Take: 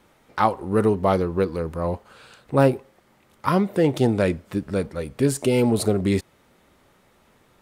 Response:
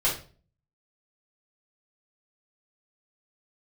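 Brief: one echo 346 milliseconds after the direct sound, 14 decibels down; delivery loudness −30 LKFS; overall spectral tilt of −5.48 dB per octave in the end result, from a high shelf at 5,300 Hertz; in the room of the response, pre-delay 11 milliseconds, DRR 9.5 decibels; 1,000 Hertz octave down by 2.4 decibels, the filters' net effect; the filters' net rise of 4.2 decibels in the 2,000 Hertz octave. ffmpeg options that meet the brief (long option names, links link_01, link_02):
-filter_complex "[0:a]equalizer=frequency=1000:width_type=o:gain=-5,equalizer=frequency=2000:width_type=o:gain=6,highshelf=frequency=5300:gain=8,aecho=1:1:346:0.2,asplit=2[link_01][link_02];[1:a]atrim=start_sample=2205,adelay=11[link_03];[link_02][link_03]afir=irnorm=-1:irlink=0,volume=-20.5dB[link_04];[link_01][link_04]amix=inputs=2:normalize=0,volume=-8dB"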